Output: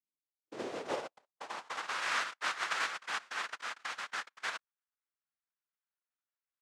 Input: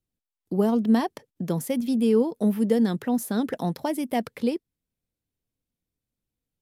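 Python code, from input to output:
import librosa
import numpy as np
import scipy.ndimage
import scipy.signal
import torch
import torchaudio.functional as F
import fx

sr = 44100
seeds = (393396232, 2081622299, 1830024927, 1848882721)

y = fx.noise_vocoder(x, sr, seeds[0], bands=1)
y = fx.quant_float(y, sr, bits=2)
y = fx.filter_sweep_bandpass(y, sr, from_hz=220.0, to_hz=1400.0, start_s=0.01, end_s=2.03, q=1.9)
y = F.gain(torch.from_numpy(y), -5.0).numpy()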